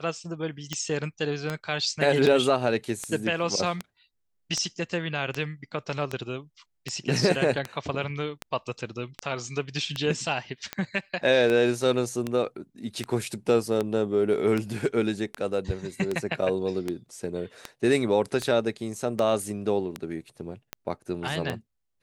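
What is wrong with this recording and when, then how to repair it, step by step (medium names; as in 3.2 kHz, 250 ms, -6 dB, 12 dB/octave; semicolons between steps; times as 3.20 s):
tick 78 rpm -14 dBFS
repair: de-click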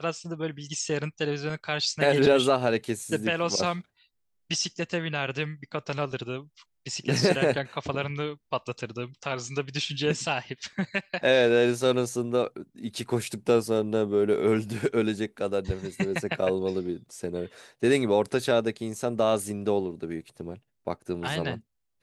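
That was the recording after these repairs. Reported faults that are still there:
nothing left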